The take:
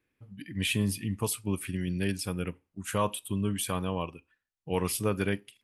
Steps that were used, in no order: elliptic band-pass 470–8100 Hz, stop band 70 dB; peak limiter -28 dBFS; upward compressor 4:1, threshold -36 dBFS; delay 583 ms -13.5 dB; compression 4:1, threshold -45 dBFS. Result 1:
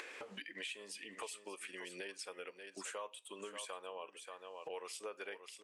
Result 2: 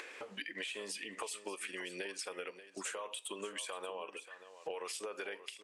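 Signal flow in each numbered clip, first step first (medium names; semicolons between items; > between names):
elliptic band-pass > upward compressor > delay > compression > peak limiter; elliptic band-pass > peak limiter > compression > upward compressor > delay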